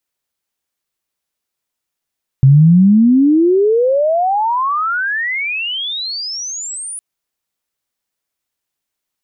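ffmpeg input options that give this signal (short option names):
-f lavfi -i "aevalsrc='pow(10,(-3.5-20*t/4.56)/20)*sin(2*PI*130*4.56/log(10000/130)*(exp(log(10000/130)*t/4.56)-1))':d=4.56:s=44100"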